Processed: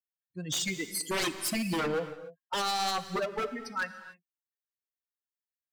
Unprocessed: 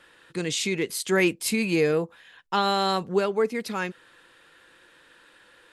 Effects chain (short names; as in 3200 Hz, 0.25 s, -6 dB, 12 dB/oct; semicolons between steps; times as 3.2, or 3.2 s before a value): per-bin expansion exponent 3; HPF 140 Hz 12 dB/oct; in parallel at -2 dB: compressor, threshold -35 dBFS, peak gain reduction 14 dB; on the sum: wavefolder -25 dBFS; non-linear reverb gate 0.32 s flat, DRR 11 dB